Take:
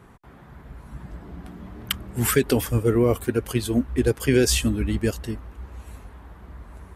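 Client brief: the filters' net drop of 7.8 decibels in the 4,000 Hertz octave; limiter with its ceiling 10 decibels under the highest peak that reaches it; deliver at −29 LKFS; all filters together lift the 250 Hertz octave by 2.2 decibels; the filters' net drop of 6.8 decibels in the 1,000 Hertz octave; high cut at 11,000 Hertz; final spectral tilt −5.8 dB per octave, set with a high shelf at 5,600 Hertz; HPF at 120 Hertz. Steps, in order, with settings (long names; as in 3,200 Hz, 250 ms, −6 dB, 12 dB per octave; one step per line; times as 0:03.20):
high-pass filter 120 Hz
low-pass filter 11,000 Hz
parametric band 250 Hz +3.5 dB
parametric band 1,000 Hz −9 dB
parametric band 4,000 Hz −6.5 dB
high-shelf EQ 5,600 Hz −8.5 dB
level −1.5 dB
brickwall limiter −17 dBFS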